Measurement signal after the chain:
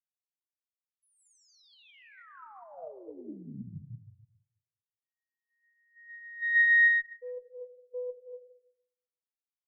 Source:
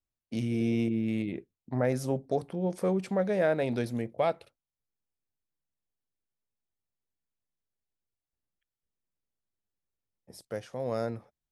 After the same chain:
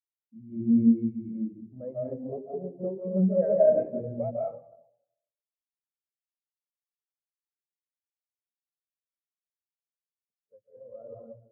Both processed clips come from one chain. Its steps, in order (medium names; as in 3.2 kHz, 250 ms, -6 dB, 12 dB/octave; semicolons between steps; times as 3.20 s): algorithmic reverb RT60 1.9 s, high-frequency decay 0.45×, pre-delay 110 ms, DRR -3 dB; Chebyshev shaper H 8 -22 dB, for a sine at -9.5 dBFS; spectral contrast expander 2.5:1; trim -1 dB